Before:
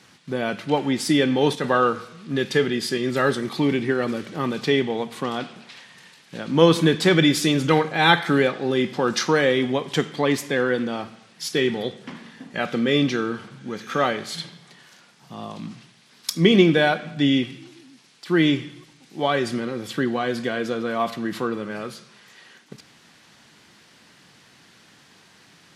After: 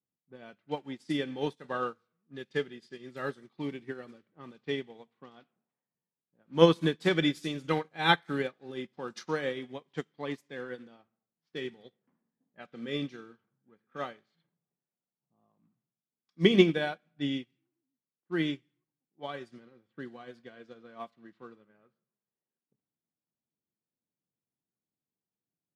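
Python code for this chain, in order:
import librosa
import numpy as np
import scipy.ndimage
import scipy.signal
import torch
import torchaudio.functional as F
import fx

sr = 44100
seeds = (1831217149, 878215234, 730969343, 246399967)

y = fx.env_lowpass(x, sr, base_hz=520.0, full_db=-19.0)
y = fx.upward_expand(y, sr, threshold_db=-34.0, expansion=2.5)
y = y * 10.0 ** (-3.0 / 20.0)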